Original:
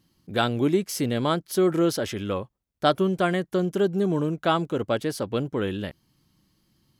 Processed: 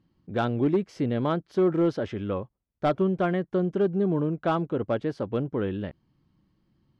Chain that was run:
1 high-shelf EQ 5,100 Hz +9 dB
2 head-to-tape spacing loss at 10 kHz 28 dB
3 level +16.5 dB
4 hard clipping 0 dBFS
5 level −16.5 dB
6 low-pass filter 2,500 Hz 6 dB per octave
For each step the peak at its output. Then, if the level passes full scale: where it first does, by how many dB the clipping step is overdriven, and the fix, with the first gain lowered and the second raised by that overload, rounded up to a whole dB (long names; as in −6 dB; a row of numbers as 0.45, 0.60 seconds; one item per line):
−4.5, −9.0, +7.5, 0.0, −16.5, −16.5 dBFS
step 3, 7.5 dB
step 3 +8.5 dB, step 5 −8.5 dB